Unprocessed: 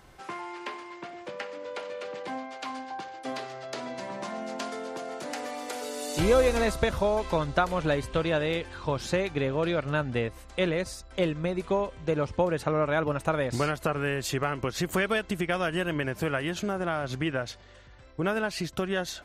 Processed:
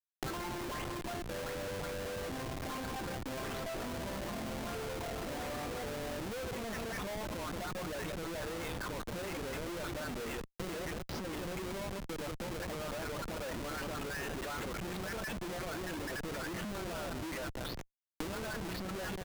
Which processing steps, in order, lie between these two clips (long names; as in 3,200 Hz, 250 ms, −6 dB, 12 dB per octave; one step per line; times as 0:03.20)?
every frequency bin delayed by itself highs late, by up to 386 ms
reverb reduction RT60 1.4 s
mains-hum notches 60/120/180/240/300/360 Hz
downward compressor 4 to 1, threshold −38 dBFS, peak gain reduction 16.5 dB
Butterworth high-pass 180 Hz 72 dB per octave
high-frequency loss of the air 76 metres
on a send: single-tap delay 182 ms −12.5 dB
on the sum: brickwall limiter −38 dBFS, peak gain reduction 11 dB
dynamic equaliser 1,600 Hz, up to +4 dB, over −59 dBFS, Q 2.1
comparator with hysteresis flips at −45.5 dBFS
multiband upward and downward compressor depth 100%
level +6 dB